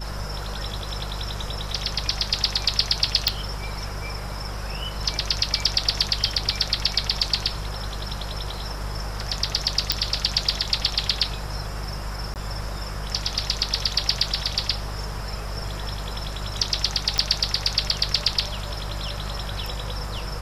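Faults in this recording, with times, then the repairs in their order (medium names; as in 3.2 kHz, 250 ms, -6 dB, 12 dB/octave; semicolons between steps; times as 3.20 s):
hum 50 Hz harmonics 4 -32 dBFS
3.28 s: pop
9.92 s: pop -3 dBFS
12.34–12.36 s: dropout 18 ms
17.18 s: pop -8 dBFS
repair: de-click; de-hum 50 Hz, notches 4; interpolate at 12.34 s, 18 ms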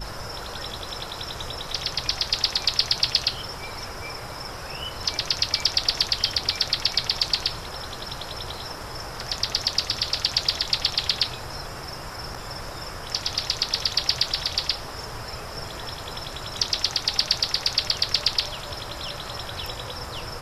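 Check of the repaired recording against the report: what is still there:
nothing left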